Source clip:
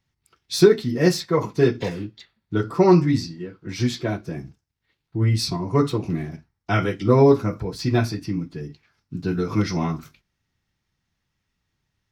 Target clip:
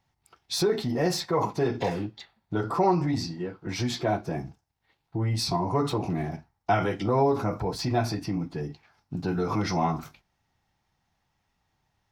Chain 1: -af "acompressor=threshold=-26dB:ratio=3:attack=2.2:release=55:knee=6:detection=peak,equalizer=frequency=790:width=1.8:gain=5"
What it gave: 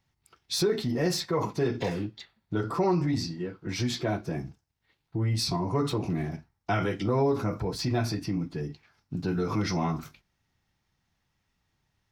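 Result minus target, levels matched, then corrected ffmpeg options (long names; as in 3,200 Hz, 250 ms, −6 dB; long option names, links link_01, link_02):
1,000 Hz band −4.0 dB
-af "acompressor=threshold=-26dB:ratio=3:attack=2.2:release=55:knee=6:detection=peak,equalizer=frequency=790:width=1.8:gain=13"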